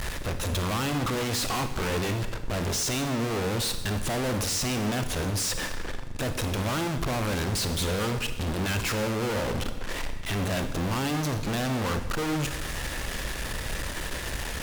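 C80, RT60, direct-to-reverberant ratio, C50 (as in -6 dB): 11.5 dB, 1.1 s, 8.0 dB, 9.5 dB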